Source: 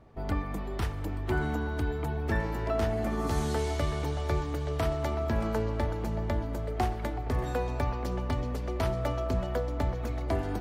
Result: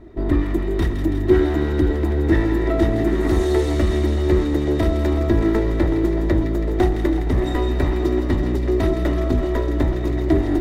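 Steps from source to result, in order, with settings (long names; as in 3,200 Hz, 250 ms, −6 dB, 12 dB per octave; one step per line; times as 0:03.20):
lower of the sound and its delayed copy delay 3 ms
low-shelf EQ 280 Hz +10.5 dB
in parallel at −3.5 dB: soft clipping −25 dBFS, distortion −10 dB
on the sum: hollow resonant body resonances 340/1,900/3,700 Hz, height 15 dB, ringing for 40 ms
on a send: delay with a high-pass on its return 164 ms, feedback 73%, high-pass 1,800 Hz, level −7.5 dB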